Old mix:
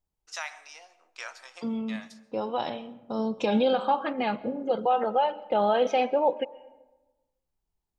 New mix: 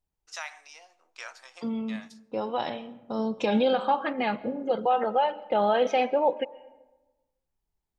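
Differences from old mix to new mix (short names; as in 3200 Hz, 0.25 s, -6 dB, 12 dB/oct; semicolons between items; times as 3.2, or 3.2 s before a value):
first voice: send -10.5 dB; second voice: add bell 1900 Hz +4.5 dB 0.48 oct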